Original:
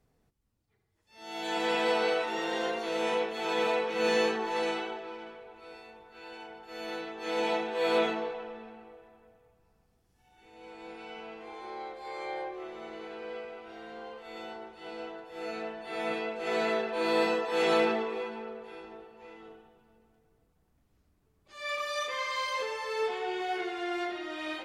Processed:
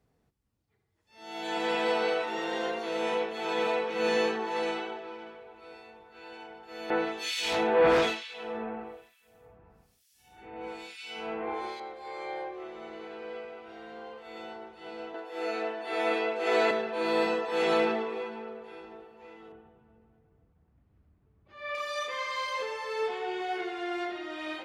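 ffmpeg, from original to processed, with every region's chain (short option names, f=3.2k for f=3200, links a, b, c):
-filter_complex "[0:a]asettb=1/sr,asplit=3[a][b][c];[a]atrim=end=6.904[d];[b]atrim=start=6.9:end=11.8,asetpts=PTS-STARTPTS,afade=t=in:d=0.004:c=qsin,afade=t=out:st=4.896:d=0.004:c=qsin,aemphasis=mode=production:type=cd,aeval=exprs='0.158*sin(PI/2*2.51*val(0)/0.158)':c=same,acrossover=split=2300[e][f];[e]aeval=exprs='val(0)*(1-1/2+1/2*cos(2*PI*1.1*n/s))':c=same[g];[f]aeval=exprs='val(0)*(1-1/2-1/2*cos(2*PI*1.1*n/s))':c=same[h];[g][h]amix=inputs=2:normalize=0[i];[c]atrim=start=11.796[j];[d][i]acrossfade=d=0.004:c1=hsin:c2=qsin[k];[k][j]acrossfade=d=0.004:c1=qsin:c2=hsin,asettb=1/sr,asplit=3[l][m][n];[l]atrim=end=15.144[o];[m]atrim=start=15.14:end=16.71,asetpts=PTS-STARTPTS,afade=t=in:d=0.004:c=qsin,afade=t=out:st=1.566:d=0.004:c=qsin,highpass=f=270:w=0.5412,highpass=f=270:w=1.3066,acontrast=30[p];[n]atrim=start=16.706[q];[o][p]acrossfade=d=0.004:c1=hsin:c2=qsin[r];[r][q]acrossfade=d=0.004:c1=qsin:c2=hsin,asettb=1/sr,asplit=3[s][t][u];[s]atrim=end=19.524[v];[t]atrim=start=19.52:end=21.75,asetpts=PTS-STARTPTS,afade=t=in:d=0.004:c=qsin,afade=t=out:st=2.226:d=0.004:c=qsin,lowpass=2.5k,equalizer=f=87:t=o:w=2.4:g=8.5[w];[u]atrim=start=21.746[x];[v][w]acrossfade=d=0.004:c1=hsin:c2=qsin[y];[y][x]acrossfade=d=0.004:c1=qsin:c2=hsin,highpass=44,highshelf=f=5.1k:g=-4.5"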